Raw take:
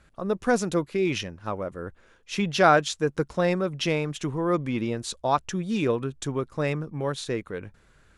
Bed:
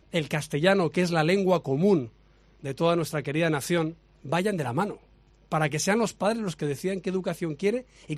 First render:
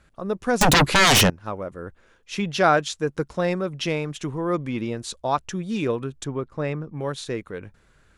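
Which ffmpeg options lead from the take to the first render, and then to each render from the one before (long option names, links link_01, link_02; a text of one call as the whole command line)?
ffmpeg -i in.wav -filter_complex "[0:a]asettb=1/sr,asplit=3[link_01][link_02][link_03];[link_01]atrim=end=0.614[link_04];[link_02]atrim=start=0.61:end=1.3,asetpts=PTS-STARTPTS,afade=type=in:duration=0.004:curve=qsin,afade=type=out:start_time=0.686:duration=0.004:curve=qsin,aeval=exprs='0.251*sin(PI/2*8.91*val(0)/0.251)':channel_layout=same[link_05];[link_03]atrim=start=1.296[link_06];[link_04][link_05]acrossfade=duration=0.004:curve1=hsin:curve2=qsin[link_07];[link_07][link_06]acrossfade=duration=0.004:curve1=qsin:curve2=hsin,asettb=1/sr,asplit=3[link_08][link_09][link_10];[link_08]atrim=end=6.244[link_11];[link_09]atrim=start=6.24:end=6.97,asetpts=PTS-STARTPTS,afade=type=in:duration=0.004:curve=qsin,afade=type=out:start_time=0.726:duration=0.004:curve=qsin,lowpass=frequency=2300:poles=1[link_12];[link_10]atrim=start=6.966[link_13];[link_11][link_12]acrossfade=duration=0.004:curve1=hsin:curve2=qsin[link_14];[link_14][link_13]acrossfade=duration=0.004:curve1=qsin:curve2=hsin" out.wav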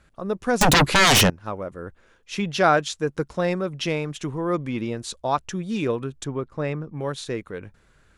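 ffmpeg -i in.wav -af anull out.wav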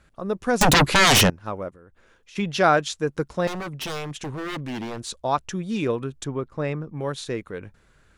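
ffmpeg -i in.wav -filter_complex "[0:a]asplit=3[link_01][link_02][link_03];[link_01]afade=type=out:start_time=1.69:duration=0.02[link_04];[link_02]acompressor=threshold=-47dB:ratio=5:attack=3.2:release=140:knee=1:detection=peak,afade=type=in:start_time=1.69:duration=0.02,afade=type=out:start_time=2.35:duration=0.02[link_05];[link_03]afade=type=in:start_time=2.35:duration=0.02[link_06];[link_04][link_05][link_06]amix=inputs=3:normalize=0,asettb=1/sr,asplit=3[link_07][link_08][link_09];[link_07]atrim=end=3.474[link_10];[link_08]atrim=start=3.47:end=5.09,asetpts=PTS-STARTPTS,afade=type=in:duration=0.004:curve=qsin,afade=type=out:start_time=1.616:duration=0.004:curve=qsin,aeval=exprs='0.0531*(abs(mod(val(0)/0.0531+3,4)-2)-1)':channel_layout=same[link_11];[link_09]atrim=start=5.086[link_12];[link_10][link_11]acrossfade=duration=0.004:curve1=hsin:curve2=qsin[link_13];[link_13][link_12]acrossfade=duration=0.004:curve1=qsin:curve2=hsin" out.wav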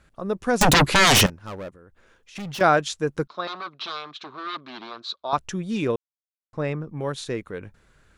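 ffmpeg -i in.wav -filter_complex "[0:a]asettb=1/sr,asplit=3[link_01][link_02][link_03];[link_01]atrim=end=1.264[link_04];[link_02]atrim=start=1.26:end=2.61,asetpts=PTS-STARTPTS,afade=type=in:duration=0.004:curve=qsin,afade=type=out:start_time=1.346:duration=0.004:curve=qsin,volume=31dB,asoftclip=hard,volume=-31dB[link_05];[link_03]atrim=start=2.606[link_06];[link_04][link_05]acrossfade=duration=0.004:curve1=hsin:curve2=qsin[link_07];[link_07][link_06]acrossfade=duration=0.004:curve1=qsin:curve2=hsin,asettb=1/sr,asplit=3[link_08][link_09][link_10];[link_08]atrim=end=3.274[link_11];[link_09]atrim=start=3.27:end=5.33,asetpts=PTS-STARTPTS,afade=type=in:duration=0.004:curve=qsin,afade=type=out:start_time=2.056:duration=0.004:curve=qsin,highpass=490,equalizer=frequency=500:width_type=q:width=4:gain=-10,equalizer=frequency=830:width_type=q:width=4:gain=-6,equalizer=frequency=1200:width_type=q:width=4:gain=8,equalizer=frequency=1900:width_type=q:width=4:gain=-8,equalizer=frequency=2800:width_type=q:width=4:gain=-6,equalizer=frequency=4000:width_type=q:width=4:gain=10,lowpass=frequency=4200:width=0.5412,lowpass=frequency=4200:width=1.3066[link_12];[link_10]atrim=start=5.326[link_13];[link_11][link_12]acrossfade=duration=0.004:curve1=hsin:curve2=qsin[link_14];[link_14][link_13]acrossfade=duration=0.004:curve1=qsin:curve2=hsin,asplit=3[link_15][link_16][link_17];[link_15]atrim=end=5.96,asetpts=PTS-STARTPTS,afade=type=out:start_time=5.956:duration=0.004:curve=hsin[link_18];[link_16]atrim=start=5.96:end=6.53,asetpts=PTS-STARTPTS,volume=0[link_19];[link_17]atrim=start=6.53,asetpts=PTS-STARTPTS,afade=type=in:duration=0.004:curve=hsin[link_20];[link_18][link_19][link_20]concat=n=3:v=0:a=1" out.wav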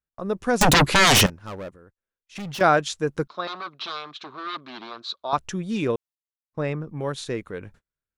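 ffmpeg -i in.wav -af "agate=range=-36dB:threshold=-49dB:ratio=16:detection=peak" out.wav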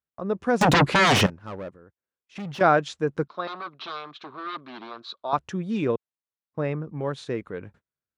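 ffmpeg -i in.wav -af "highpass=86,aemphasis=mode=reproduction:type=75kf" out.wav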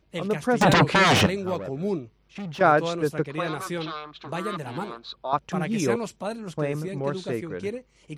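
ffmpeg -i in.wav -i bed.wav -filter_complex "[1:a]volume=-6dB[link_01];[0:a][link_01]amix=inputs=2:normalize=0" out.wav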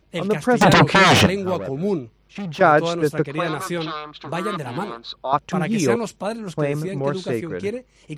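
ffmpeg -i in.wav -af "volume=5dB,alimiter=limit=-3dB:level=0:latency=1" out.wav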